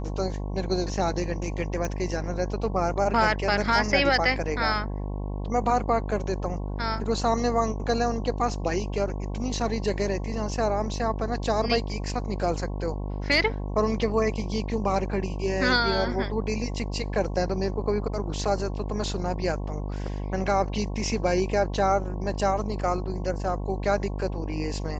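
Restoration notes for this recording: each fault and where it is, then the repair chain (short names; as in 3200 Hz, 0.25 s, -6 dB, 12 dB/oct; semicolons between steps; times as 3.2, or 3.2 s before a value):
buzz 50 Hz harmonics 22 -31 dBFS
1.85 pop -17 dBFS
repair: de-click; de-hum 50 Hz, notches 22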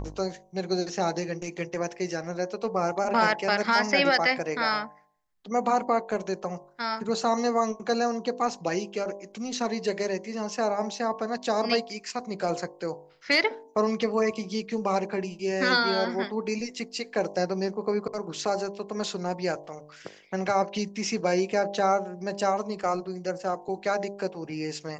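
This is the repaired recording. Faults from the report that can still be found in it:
none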